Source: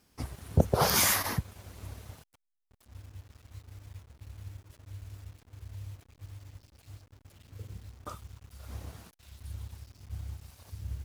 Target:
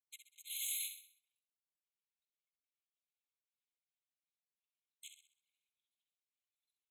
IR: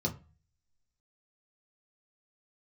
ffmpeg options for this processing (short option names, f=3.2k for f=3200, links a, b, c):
-filter_complex "[0:a]highpass=520,anlmdn=0.0631,equalizer=f=1k:t=o:w=0.67:g=-6,equalizer=f=4k:t=o:w=0.67:g=4,equalizer=f=10k:t=o:w=0.67:g=11,areverse,acompressor=threshold=-39dB:ratio=5,areverse,flanger=delay=18:depth=6.3:speed=3,asoftclip=type=tanh:threshold=-37.5dB,atempo=1.6,afreqshift=-220,asplit=2[a][b];[b]aecho=0:1:64|128|192|256|320:0.398|0.175|0.0771|0.0339|0.0149[c];[a][c]amix=inputs=2:normalize=0,afftfilt=real='re*eq(mod(floor(b*sr/1024/2100),2),1)':imag='im*eq(mod(floor(b*sr/1024/2100),2),1)':win_size=1024:overlap=0.75,volume=8.5dB"